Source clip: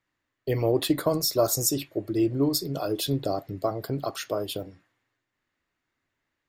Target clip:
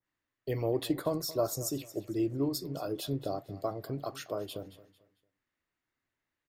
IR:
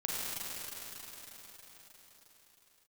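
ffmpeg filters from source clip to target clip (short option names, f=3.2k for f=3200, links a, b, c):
-filter_complex "[0:a]asplit=2[a][b];[b]aecho=0:1:224|448|672:0.126|0.0378|0.0113[c];[a][c]amix=inputs=2:normalize=0,adynamicequalizer=threshold=0.00891:dfrequency=1800:dqfactor=0.7:tfrequency=1800:tqfactor=0.7:attack=5:release=100:ratio=0.375:range=2.5:mode=cutabove:tftype=highshelf,volume=-7dB"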